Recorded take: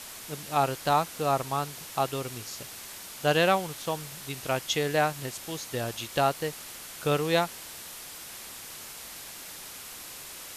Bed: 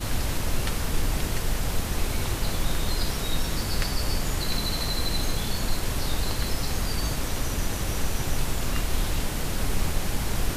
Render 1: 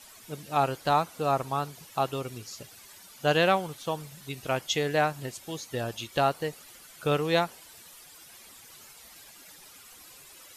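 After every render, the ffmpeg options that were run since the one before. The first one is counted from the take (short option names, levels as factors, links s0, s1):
-af "afftdn=nr=12:nf=-43"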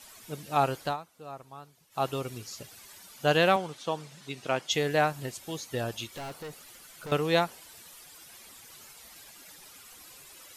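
-filter_complex "[0:a]asettb=1/sr,asplit=3[s0][s1][s2];[s0]atrim=end=3.564[s3];[s1]atrim=start=3.56:end=4.71,asetpts=PTS-STARTPTS,afade=t=in:d=0.004:c=qsin,afade=t=out:st=1.146:d=0.004:c=qsin,highpass=160,lowpass=7400[s4];[s2]atrim=start=4.706[s5];[s3][s4]acrossfade=d=0.004:c1=hsin:c2=qsin[s6];[s6][s5]acrossfade=d=0.004:c1=qsin:c2=hsin,asettb=1/sr,asplit=3[s7][s8][s9];[s7]atrim=end=6.164[s10];[s8]atrim=start=6.16:end=7.12,asetpts=PTS-STARTPTS,afade=t=in:d=0.004:c=qsin,afade=t=out:st=0.956:d=0.004:c=qsin,aeval=exprs='(tanh(70.8*val(0)+0.15)-tanh(0.15))/70.8':c=same[s11];[s9]atrim=start=7.116[s12];[s10][s11]acrossfade=d=0.004:c1=hsin:c2=qsin[s13];[s13][s12]acrossfade=d=0.004:c1=qsin:c2=hsin,asplit=3[s14][s15][s16];[s14]atrim=end=0.97,asetpts=PTS-STARTPTS,afade=t=out:st=0.82:d=0.15:silence=0.149624[s17];[s15]atrim=start=0.97:end=1.9,asetpts=PTS-STARTPTS,volume=0.15[s18];[s16]atrim=start=1.9,asetpts=PTS-STARTPTS,afade=t=in:d=0.15:silence=0.149624[s19];[s17][s18][s19]concat=n=3:v=0:a=1"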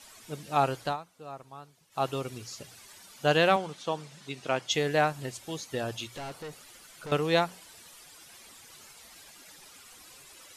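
-af "lowpass=11000,bandreject=f=60:t=h:w=6,bandreject=f=120:t=h:w=6,bandreject=f=180:t=h:w=6"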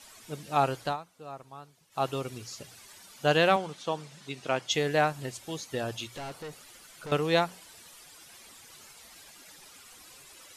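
-af anull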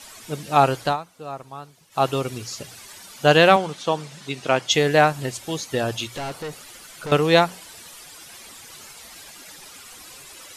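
-af "volume=2.82"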